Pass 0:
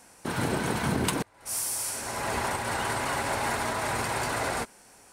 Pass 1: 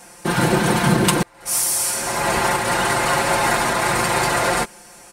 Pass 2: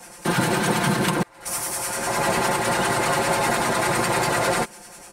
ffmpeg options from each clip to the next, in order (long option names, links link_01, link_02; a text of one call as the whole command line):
ffmpeg -i in.wav -af "aecho=1:1:5.7:0.87,volume=8.5dB" out.wav
ffmpeg -i in.wav -filter_complex "[0:a]acrossover=split=99|660|2500[link_01][link_02][link_03][link_04];[link_01]acompressor=threshold=-47dB:ratio=4[link_05];[link_02]acompressor=threshold=-22dB:ratio=4[link_06];[link_03]acompressor=threshold=-25dB:ratio=4[link_07];[link_04]acompressor=threshold=-29dB:ratio=4[link_08];[link_05][link_06][link_07][link_08]amix=inputs=4:normalize=0,acrossover=split=1000[link_09][link_10];[link_09]aeval=exprs='val(0)*(1-0.5/2+0.5/2*cos(2*PI*10*n/s))':channel_layout=same[link_11];[link_10]aeval=exprs='val(0)*(1-0.5/2-0.5/2*cos(2*PI*10*n/s))':channel_layout=same[link_12];[link_11][link_12]amix=inputs=2:normalize=0,volume=3dB" out.wav